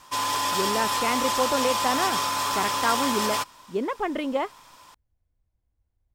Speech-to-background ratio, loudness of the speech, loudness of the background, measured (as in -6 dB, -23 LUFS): -3.5 dB, -28.5 LUFS, -25.0 LUFS